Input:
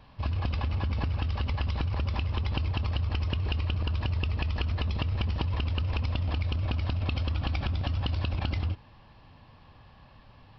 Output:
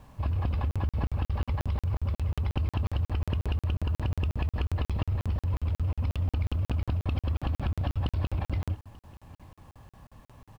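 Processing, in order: low-pass 1.1 kHz 6 dB/octave; in parallel at -8 dB: hard clipper -34.5 dBFS, distortion -7 dB; on the sum: bit crusher 11-bit; delay 888 ms -22.5 dB; crackling interface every 0.18 s, samples 2048, zero, from 0.71 s

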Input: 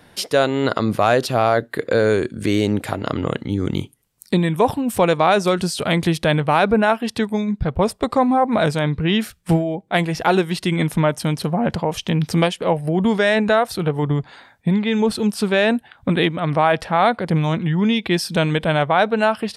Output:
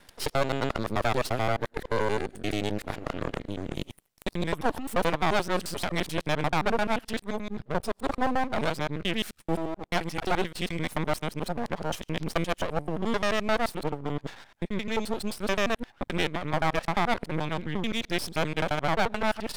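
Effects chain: time reversed locally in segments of 87 ms; high-pass 250 Hz 6 dB/octave; half-wave rectifier; reverse; upward compressor, threshold -24 dBFS; reverse; trim -5 dB

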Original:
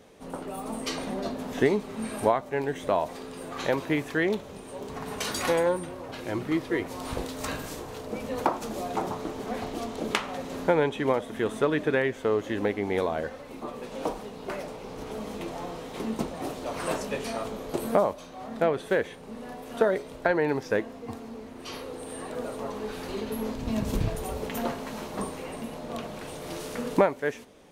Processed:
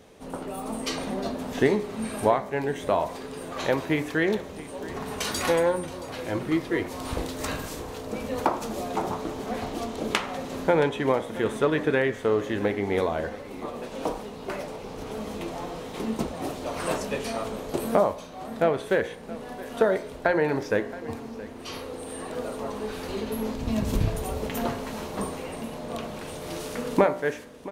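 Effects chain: peaking EQ 69 Hz +4.5 dB 0.93 oct; de-hum 59.49 Hz, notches 39; on a send: delay 673 ms -17.5 dB; on the sum: trim +2 dB

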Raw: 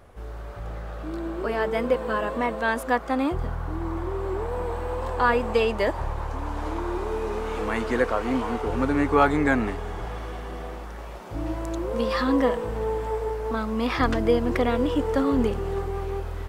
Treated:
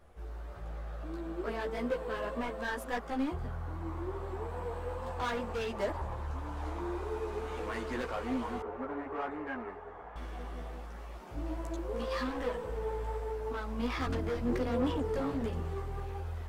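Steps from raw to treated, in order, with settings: hard clipper -21.5 dBFS, distortion -9 dB; chorus voices 6, 1.4 Hz, delay 14 ms, depth 3 ms; 8.62–10.16 s: three-band isolator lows -15 dB, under 350 Hz, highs -24 dB, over 2 kHz; trim -6 dB

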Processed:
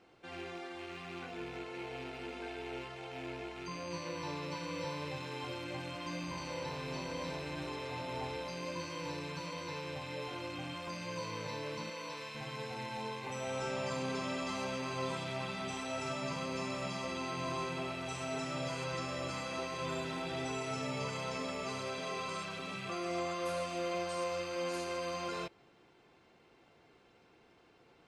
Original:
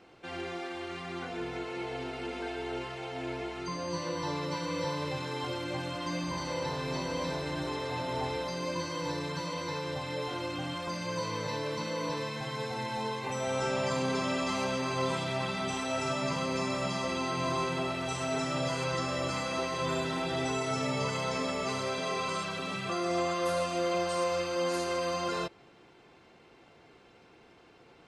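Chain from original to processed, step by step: rattle on loud lows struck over -45 dBFS, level -33 dBFS; 11.90–12.35 s: bass shelf 480 Hz -10.5 dB; trim -6.5 dB

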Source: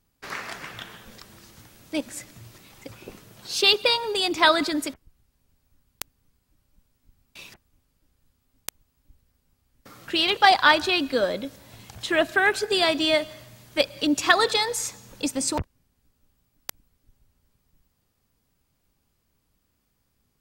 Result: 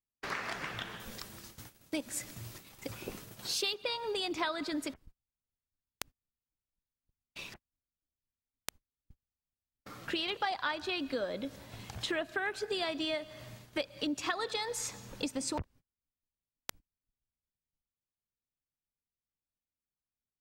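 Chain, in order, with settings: gate -49 dBFS, range -30 dB; treble shelf 6.8 kHz -9 dB, from 1.00 s +4.5 dB, from 3.74 s -7.5 dB; compression 5:1, threshold -33 dBFS, peak gain reduction 18.5 dB

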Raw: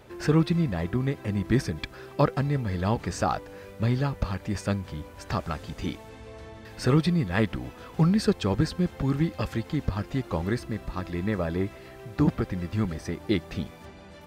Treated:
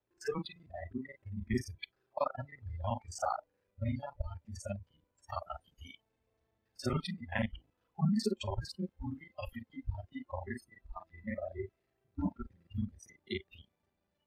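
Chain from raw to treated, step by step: time reversed locally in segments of 35 ms; spectral noise reduction 29 dB; trim -6.5 dB

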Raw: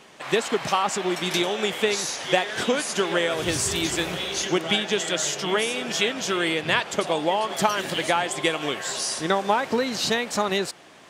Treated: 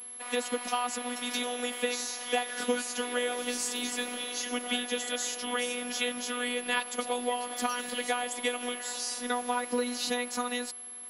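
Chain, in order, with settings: whistle 11 kHz -35 dBFS; steep high-pass 150 Hz 72 dB/octave; robot voice 245 Hz; trim -5.5 dB

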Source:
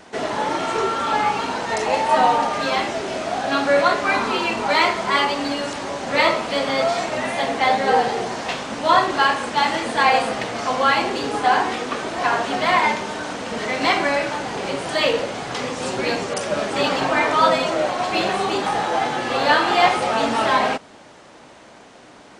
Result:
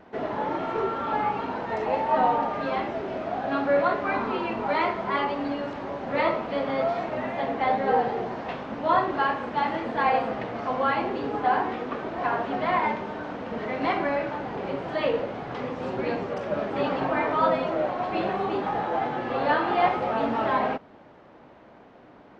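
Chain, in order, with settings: tape spacing loss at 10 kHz 40 dB; trim -2.5 dB

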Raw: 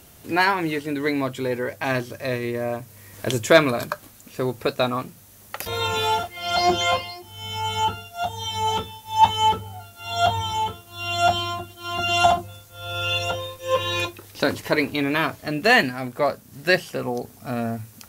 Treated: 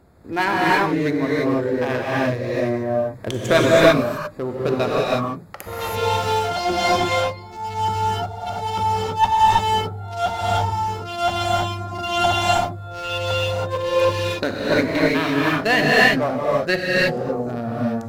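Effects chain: local Wiener filter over 15 samples; in parallel at -3 dB: one-sided clip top -23 dBFS; on the sum: gated-style reverb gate 360 ms rising, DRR -5.5 dB; trim -6 dB

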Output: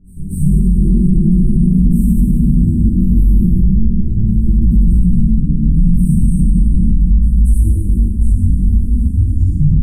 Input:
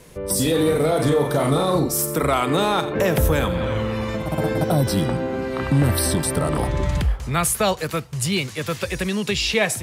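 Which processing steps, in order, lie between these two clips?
tape stop on the ending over 0.40 s; gate with hold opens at -28 dBFS; Chebyshev band-stop 330–8800 Hz, order 5; bass shelf 270 Hz -7 dB; comb 6.7 ms, depth 39%; frequency shift -110 Hz; chorus voices 4, 1.1 Hz, delay 19 ms, depth 3.2 ms; distance through air 220 m; pre-echo 235 ms -18.5 dB; plate-style reverb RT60 2.7 s, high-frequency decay 0.55×, DRR -8.5 dB; loudness maximiser +16 dB; trim -2.5 dB

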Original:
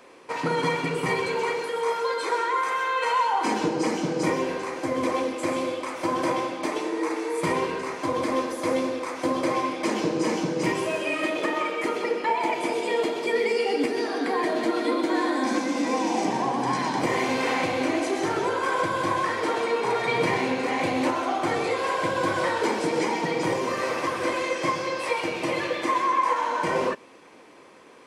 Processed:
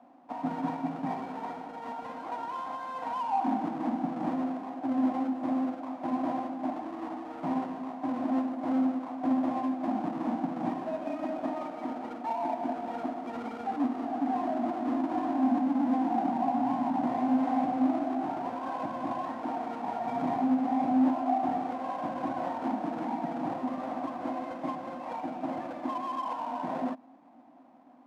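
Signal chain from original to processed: square wave that keeps the level; two resonant band-passes 430 Hz, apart 1.5 oct

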